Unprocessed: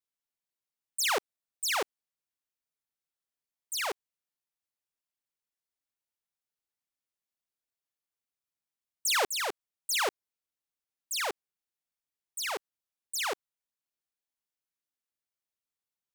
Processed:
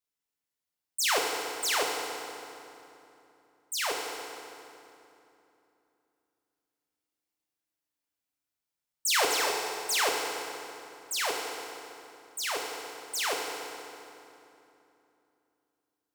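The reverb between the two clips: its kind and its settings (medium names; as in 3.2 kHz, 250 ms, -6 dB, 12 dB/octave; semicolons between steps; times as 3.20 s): FDN reverb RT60 2.9 s, low-frequency decay 1.35×, high-frequency decay 0.75×, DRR -0.5 dB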